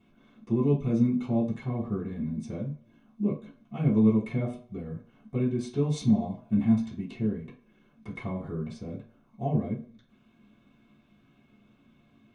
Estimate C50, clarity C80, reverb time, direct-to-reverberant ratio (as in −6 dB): 10.5 dB, 15.5 dB, 0.50 s, −9.0 dB